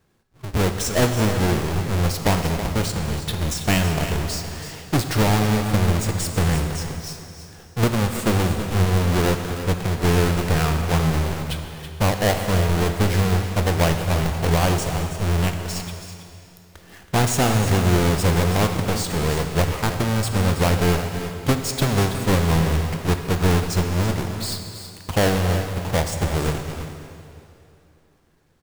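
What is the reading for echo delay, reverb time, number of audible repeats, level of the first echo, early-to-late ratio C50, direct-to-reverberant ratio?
326 ms, 2.8 s, 1, -11.0 dB, 5.0 dB, 4.5 dB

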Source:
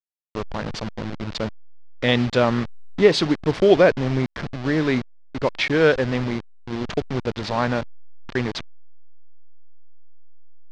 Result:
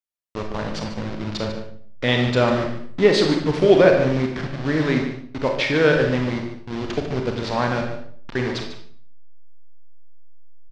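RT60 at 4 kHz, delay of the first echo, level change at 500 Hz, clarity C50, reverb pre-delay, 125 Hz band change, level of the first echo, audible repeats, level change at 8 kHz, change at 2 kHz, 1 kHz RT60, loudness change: 0.50 s, 147 ms, +1.0 dB, 4.5 dB, 31 ms, +1.5 dB, -10.5 dB, 1, no reading, +1.0 dB, 0.55 s, +1.0 dB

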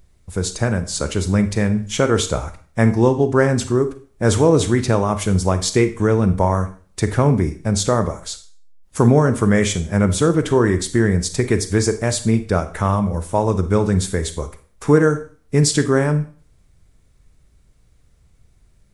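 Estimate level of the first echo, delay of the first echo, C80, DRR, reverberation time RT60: no echo, no echo, 17.5 dB, 10.0 dB, 0.40 s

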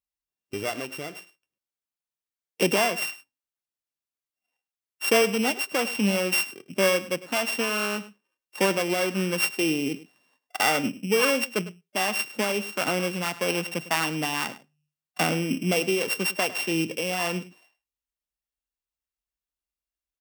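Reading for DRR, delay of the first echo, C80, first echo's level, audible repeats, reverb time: no reverb, 103 ms, no reverb, -16.5 dB, 1, no reverb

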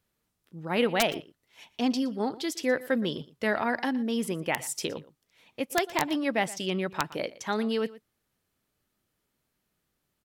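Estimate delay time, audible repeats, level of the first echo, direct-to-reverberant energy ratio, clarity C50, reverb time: 118 ms, 1, -19.0 dB, no reverb, no reverb, no reverb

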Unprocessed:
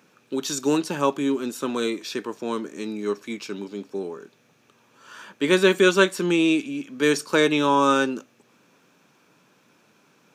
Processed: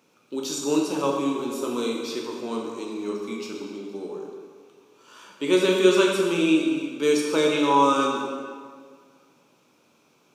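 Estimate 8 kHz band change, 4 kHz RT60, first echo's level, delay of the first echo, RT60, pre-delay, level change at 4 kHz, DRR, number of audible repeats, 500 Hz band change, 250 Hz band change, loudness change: -1.0 dB, 1.4 s, no echo, no echo, 1.8 s, 9 ms, -1.0 dB, -1.0 dB, no echo, 0.0 dB, -0.5 dB, -0.5 dB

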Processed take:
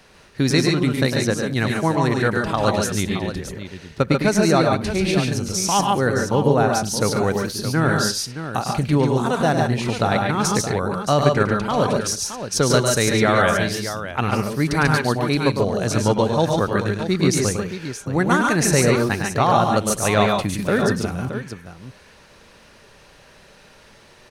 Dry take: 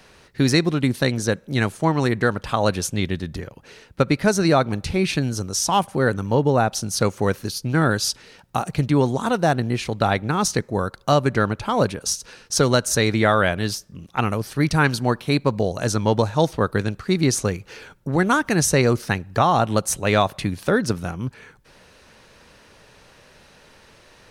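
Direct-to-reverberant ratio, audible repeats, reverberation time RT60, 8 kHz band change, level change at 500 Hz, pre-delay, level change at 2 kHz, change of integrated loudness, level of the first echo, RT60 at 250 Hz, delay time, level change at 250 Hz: no reverb, 4, no reverb, +1.5 dB, +2.0 dB, no reverb, +1.5 dB, +1.5 dB, -6.5 dB, no reverb, 105 ms, +1.5 dB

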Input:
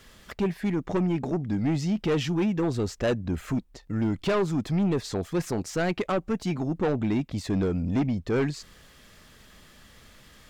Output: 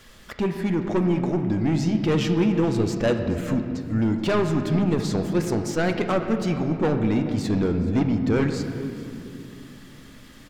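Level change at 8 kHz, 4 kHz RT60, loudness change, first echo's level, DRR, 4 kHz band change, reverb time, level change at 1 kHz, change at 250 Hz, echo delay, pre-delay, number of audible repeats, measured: +2.5 dB, 1.5 s, +4.0 dB, -19.0 dB, 5.5 dB, +3.0 dB, 2.7 s, +3.5 dB, +4.5 dB, 427 ms, 3 ms, 1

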